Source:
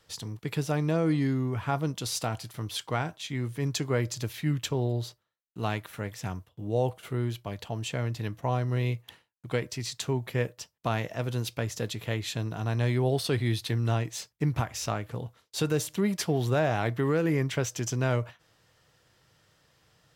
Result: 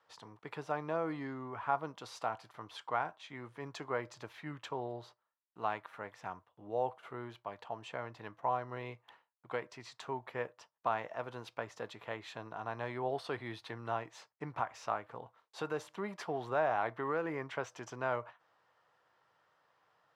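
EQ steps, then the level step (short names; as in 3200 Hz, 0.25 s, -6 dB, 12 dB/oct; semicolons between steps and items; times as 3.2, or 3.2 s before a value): band-pass 990 Hz, Q 1.7; +1.0 dB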